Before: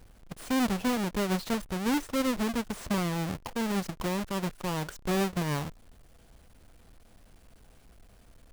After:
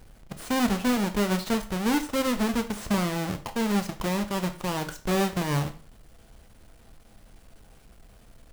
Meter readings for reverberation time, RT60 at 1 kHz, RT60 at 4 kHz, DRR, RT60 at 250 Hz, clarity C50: 0.40 s, 0.40 s, 0.40 s, 7.5 dB, 0.35 s, 13.5 dB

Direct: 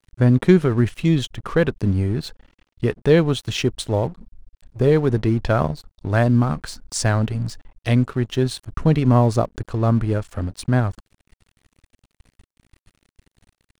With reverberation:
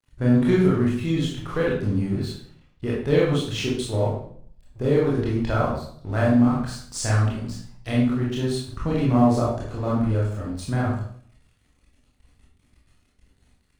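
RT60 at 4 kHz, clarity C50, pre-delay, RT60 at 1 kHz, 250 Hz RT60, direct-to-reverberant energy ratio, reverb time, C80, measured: 0.50 s, 2.0 dB, 20 ms, 0.55 s, 0.65 s, -5.5 dB, 0.55 s, 6.0 dB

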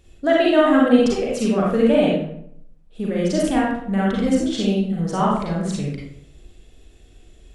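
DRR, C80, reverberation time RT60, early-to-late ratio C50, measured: -4.5 dB, 4.0 dB, 0.70 s, -0.5 dB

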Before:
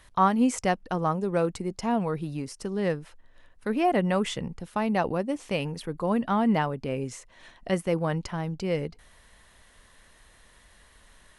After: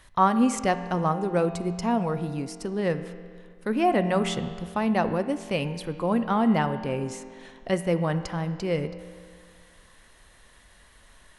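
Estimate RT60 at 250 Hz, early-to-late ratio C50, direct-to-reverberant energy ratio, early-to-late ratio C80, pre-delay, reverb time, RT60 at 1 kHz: 2.0 s, 11.0 dB, 9.5 dB, 12.0 dB, 5 ms, 2.0 s, 2.0 s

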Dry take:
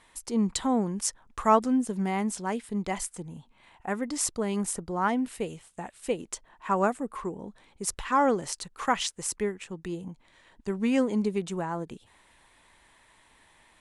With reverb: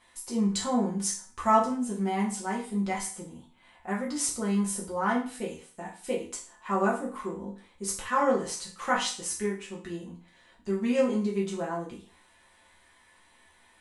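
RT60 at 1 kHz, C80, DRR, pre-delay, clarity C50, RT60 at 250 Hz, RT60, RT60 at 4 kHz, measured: 0.40 s, 12.5 dB, -5.0 dB, 4 ms, 7.5 dB, 0.40 s, 0.45 s, 0.40 s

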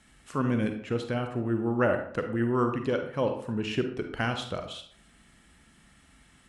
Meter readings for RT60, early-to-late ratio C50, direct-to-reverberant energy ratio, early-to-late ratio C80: 0.60 s, 7.5 dB, 5.5 dB, 11.0 dB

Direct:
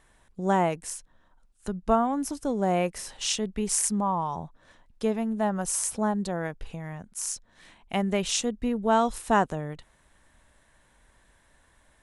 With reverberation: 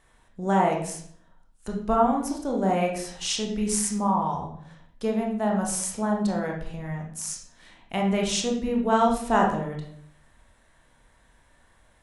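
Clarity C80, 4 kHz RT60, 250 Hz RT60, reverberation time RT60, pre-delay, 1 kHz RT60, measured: 9.0 dB, 0.45 s, 0.75 s, 0.65 s, 20 ms, 0.55 s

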